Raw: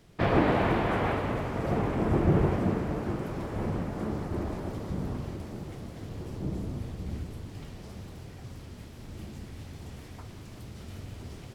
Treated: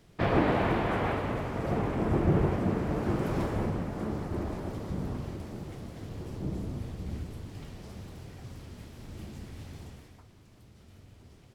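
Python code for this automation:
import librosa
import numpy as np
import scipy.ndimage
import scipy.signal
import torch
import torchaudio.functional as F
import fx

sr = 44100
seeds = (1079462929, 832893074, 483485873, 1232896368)

y = fx.gain(x, sr, db=fx.line((2.65, -1.5), (3.41, 5.5), (3.74, -1.0), (9.79, -1.0), (10.27, -12.0)))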